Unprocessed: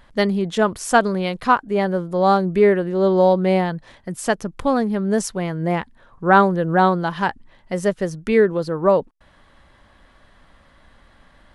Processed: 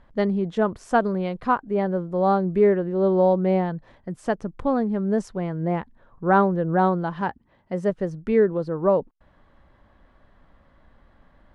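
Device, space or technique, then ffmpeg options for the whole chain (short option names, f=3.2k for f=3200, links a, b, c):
through cloth: -filter_complex "[0:a]asettb=1/sr,asplit=3[a][b][c];[a]atrim=end=7.214[d];[b]atrim=start=7.21:end=7.9,asetpts=PTS-STARTPTS,afade=t=in:d=0.004:c=qsin,afade=t=out:st=0.686:d=0.004:c=qsin,highpass=61[e];[c]atrim=start=7.896[f];[d][e]acrossfade=d=0.004:c1=hsin:c2=qsin[g];[g][f]acrossfade=d=0.004:c1=qsin:c2=hsin,lowpass=8.4k,highshelf=f=2k:g=-15,volume=-2.5dB"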